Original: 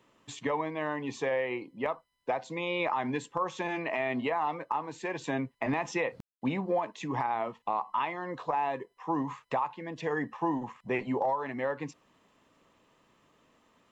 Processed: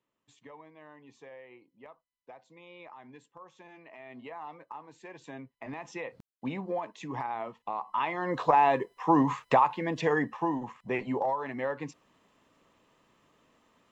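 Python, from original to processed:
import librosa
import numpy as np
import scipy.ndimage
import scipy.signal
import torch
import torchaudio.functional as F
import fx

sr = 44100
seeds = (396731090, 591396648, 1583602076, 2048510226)

y = fx.gain(x, sr, db=fx.line((3.9, -19.0), (4.38, -12.0), (5.52, -12.0), (6.49, -4.0), (7.76, -4.0), (8.39, 8.0), (9.9, 8.0), (10.52, -0.5)))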